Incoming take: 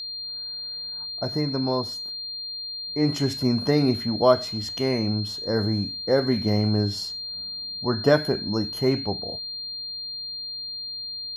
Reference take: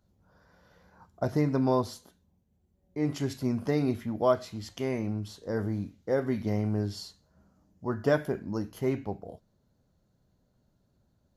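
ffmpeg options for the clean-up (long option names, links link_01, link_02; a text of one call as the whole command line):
ffmpeg -i in.wav -af "bandreject=frequency=4200:width=30,asetnsamples=nb_out_samples=441:pad=0,asendcmd='2.87 volume volume -6.5dB',volume=0dB" out.wav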